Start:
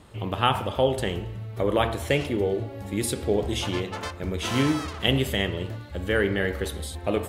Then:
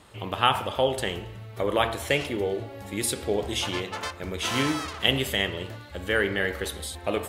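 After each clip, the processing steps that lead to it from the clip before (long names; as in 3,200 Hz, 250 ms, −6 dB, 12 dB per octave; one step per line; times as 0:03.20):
low-shelf EQ 470 Hz −9 dB
level +2.5 dB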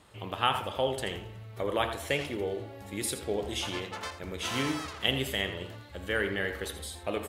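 single-tap delay 82 ms −11.5 dB
level −5.5 dB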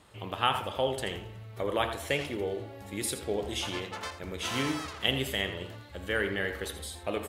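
no processing that can be heard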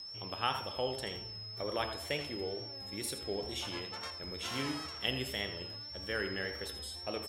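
steady tone 5,300 Hz −37 dBFS
tape wow and flutter 57 cents
level −6.5 dB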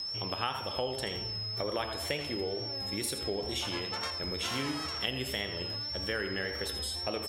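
downward compressor 3 to 1, threshold −41 dBFS, peak gain reduction 11 dB
level +9 dB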